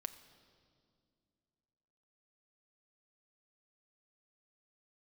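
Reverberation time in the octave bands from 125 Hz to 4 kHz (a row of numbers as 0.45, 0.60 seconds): 2.8, 3.0, 2.6, 2.0, 1.6, 1.9 seconds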